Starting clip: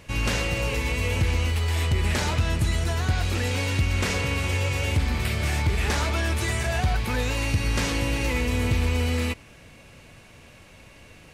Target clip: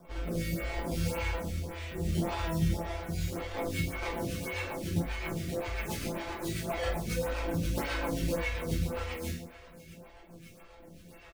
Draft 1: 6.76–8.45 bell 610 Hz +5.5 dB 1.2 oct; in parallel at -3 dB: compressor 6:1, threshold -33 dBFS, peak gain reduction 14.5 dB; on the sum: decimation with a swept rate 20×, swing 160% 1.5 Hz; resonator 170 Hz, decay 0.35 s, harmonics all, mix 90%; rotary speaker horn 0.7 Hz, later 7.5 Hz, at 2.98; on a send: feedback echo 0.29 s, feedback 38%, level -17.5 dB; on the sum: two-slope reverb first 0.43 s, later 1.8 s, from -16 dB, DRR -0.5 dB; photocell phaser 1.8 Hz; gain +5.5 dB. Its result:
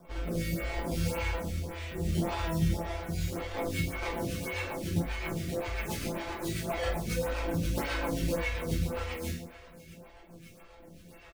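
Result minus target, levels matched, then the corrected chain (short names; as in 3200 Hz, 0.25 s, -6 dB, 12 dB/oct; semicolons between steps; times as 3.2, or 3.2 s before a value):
compressor: peak gain reduction -6 dB
6.76–8.45 bell 610 Hz +5.5 dB 1.2 oct; in parallel at -3 dB: compressor 6:1, threshold -40 dBFS, peak gain reduction 20 dB; on the sum: decimation with a swept rate 20×, swing 160% 1.5 Hz; resonator 170 Hz, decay 0.35 s, harmonics all, mix 90%; rotary speaker horn 0.7 Hz, later 7.5 Hz, at 2.98; on a send: feedback echo 0.29 s, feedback 38%, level -17.5 dB; on the sum: two-slope reverb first 0.43 s, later 1.8 s, from -16 dB, DRR -0.5 dB; photocell phaser 1.8 Hz; gain +5.5 dB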